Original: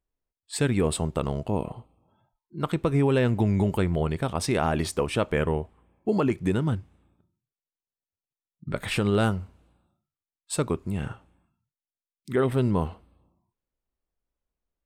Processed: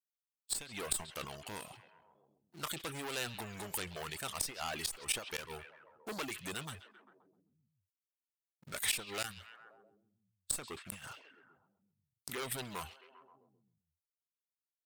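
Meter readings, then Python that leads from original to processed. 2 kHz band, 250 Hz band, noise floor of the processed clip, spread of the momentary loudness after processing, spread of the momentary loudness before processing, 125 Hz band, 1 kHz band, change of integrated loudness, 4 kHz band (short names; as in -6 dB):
-7.5 dB, -23.5 dB, under -85 dBFS, 15 LU, 12 LU, -25.0 dB, -12.5 dB, -13.0 dB, -2.5 dB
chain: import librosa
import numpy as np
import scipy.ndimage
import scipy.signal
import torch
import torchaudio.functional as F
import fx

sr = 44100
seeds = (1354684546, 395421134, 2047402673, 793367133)

p1 = fx.leveller(x, sr, passes=3)
p2 = fx.dereverb_blind(p1, sr, rt60_s=0.63)
p3 = F.preemphasis(torch.from_numpy(p2), 0.97).numpy()
p4 = fx.tube_stage(p3, sr, drive_db=16.0, bias=0.7)
p5 = p4 + fx.echo_stepped(p4, sr, ms=132, hz=3300.0, octaves=-0.7, feedback_pct=70, wet_db=-10, dry=0)
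p6 = fx.gate_flip(p5, sr, shuts_db=-20.0, range_db=-24)
p7 = fx.sustainer(p6, sr, db_per_s=140.0)
y = p7 * librosa.db_to_amplitude(3.5)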